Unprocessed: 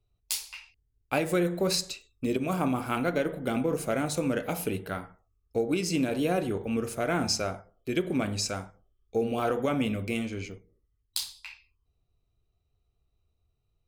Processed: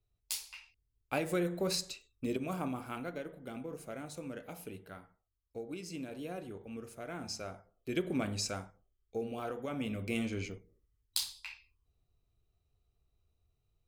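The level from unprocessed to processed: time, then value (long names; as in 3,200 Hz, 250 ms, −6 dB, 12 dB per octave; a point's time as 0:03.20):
0:02.30 −6.5 dB
0:03.32 −15 dB
0:07.19 −15 dB
0:07.98 −5.5 dB
0:08.55 −5.5 dB
0:09.62 −12.5 dB
0:10.27 −2 dB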